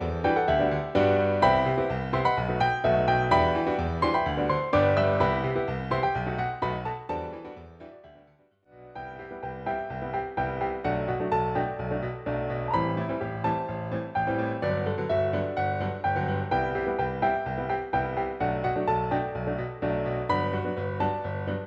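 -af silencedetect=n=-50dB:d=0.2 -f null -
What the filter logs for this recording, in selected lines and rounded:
silence_start: 8.28
silence_end: 8.70 | silence_duration: 0.41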